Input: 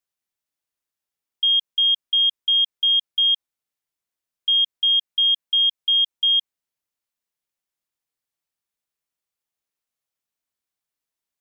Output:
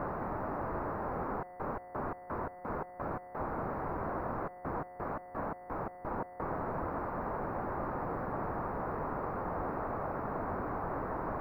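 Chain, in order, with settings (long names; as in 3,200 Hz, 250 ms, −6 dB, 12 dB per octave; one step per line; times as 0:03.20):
sign of each sample alone
inverse Chebyshev low-pass filter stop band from 3,000 Hz, stop band 50 dB
level +2.5 dB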